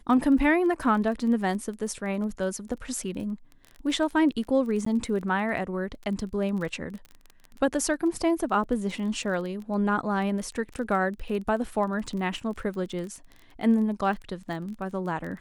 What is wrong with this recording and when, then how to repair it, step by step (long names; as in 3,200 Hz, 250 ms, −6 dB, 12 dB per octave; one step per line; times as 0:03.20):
surface crackle 20 per second −34 dBFS
0:04.85–0:04.86: drop-out 14 ms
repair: click removal
repair the gap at 0:04.85, 14 ms